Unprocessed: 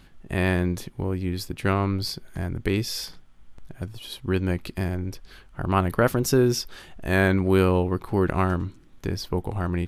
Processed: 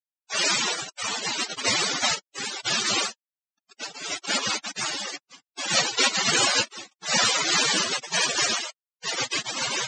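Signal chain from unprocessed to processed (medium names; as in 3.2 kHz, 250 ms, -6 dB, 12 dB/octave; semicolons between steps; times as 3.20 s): partials quantised in pitch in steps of 4 st; in parallel at -2 dB: peak limiter -13.5 dBFS, peak gain reduction 9.5 dB; on the sum: bit crusher 5-bit; noise-vocoded speech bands 1; loudest bins only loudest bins 64; trim -1.5 dB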